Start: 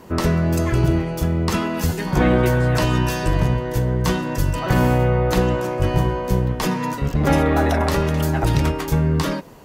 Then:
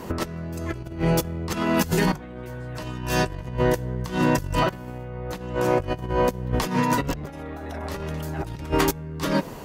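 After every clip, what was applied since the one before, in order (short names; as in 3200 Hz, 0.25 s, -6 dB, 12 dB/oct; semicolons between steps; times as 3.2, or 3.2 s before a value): negative-ratio compressor -25 dBFS, ratio -0.5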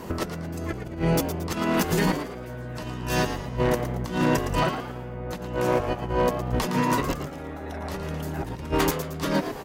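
one-sided fold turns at -14.5 dBFS; on a send: frequency-shifting echo 0.113 s, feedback 39%, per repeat +110 Hz, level -9 dB; on the sum: gain -1.5 dB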